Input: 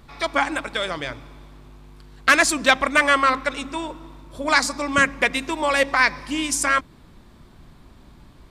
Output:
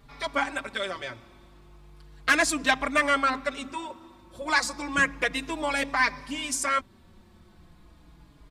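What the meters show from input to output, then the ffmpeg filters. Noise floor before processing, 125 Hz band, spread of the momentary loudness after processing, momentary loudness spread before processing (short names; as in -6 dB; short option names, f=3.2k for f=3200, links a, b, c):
-50 dBFS, -6.5 dB, 14 LU, 14 LU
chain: -filter_complex "[0:a]asplit=2[a][b];[b]adelay=4.5,afreqshift=-0.34[c];[a][c]amix=inputs=2:normalize=1,volume=-3dB"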